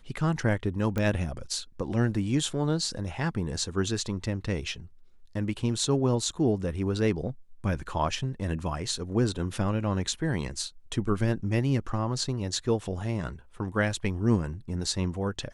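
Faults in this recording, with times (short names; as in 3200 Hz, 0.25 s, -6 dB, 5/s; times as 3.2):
0.98 pop -16 dBFS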